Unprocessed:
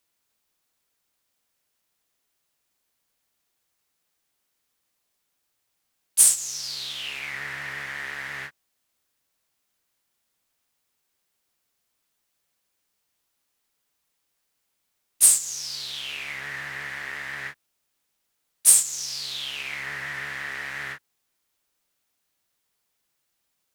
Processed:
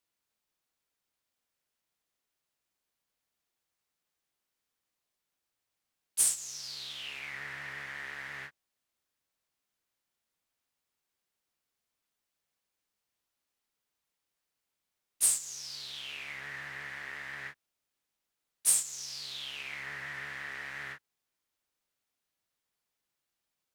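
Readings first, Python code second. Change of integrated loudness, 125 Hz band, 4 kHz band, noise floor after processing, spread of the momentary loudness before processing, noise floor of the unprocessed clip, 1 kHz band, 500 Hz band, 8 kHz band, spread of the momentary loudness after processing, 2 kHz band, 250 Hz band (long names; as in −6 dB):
−10.5 dB, −7.5 dB, −8.5 dB, below −85 dBFS, 17 LU, −77 dBFS, −7.5 dB, −7.5 dB, −10.5 dB, 15 LU, −8.0 dB, can't be measured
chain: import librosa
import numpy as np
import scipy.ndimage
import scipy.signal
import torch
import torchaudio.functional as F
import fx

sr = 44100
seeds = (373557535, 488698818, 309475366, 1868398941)

y = fx.high_shelf(x, sr, hz=6500.0, db=-4.5)
y = y * 10.0 ** (-7.5 / 20.0)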